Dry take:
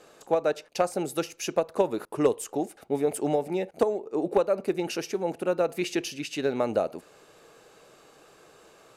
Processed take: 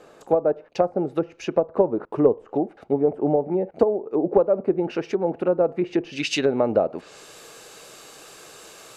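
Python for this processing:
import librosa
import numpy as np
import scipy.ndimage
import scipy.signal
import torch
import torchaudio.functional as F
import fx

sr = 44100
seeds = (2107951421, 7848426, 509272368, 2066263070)

y = fx.env_lowpass_down(x, sr, base_hz=850.0, full_db=-24.0)
y = fx.high_shelf(y, sr, hz=2400.0, db=fx.steps((0.0, -9.5), (4.32, -2.0), (6.12, 11.5)))
y = y * 10.0 ** (6.0 / 20.0)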